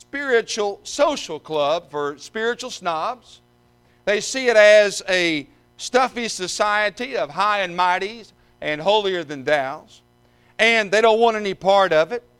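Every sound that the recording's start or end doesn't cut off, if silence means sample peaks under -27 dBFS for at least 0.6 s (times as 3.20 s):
4.07–9.77 s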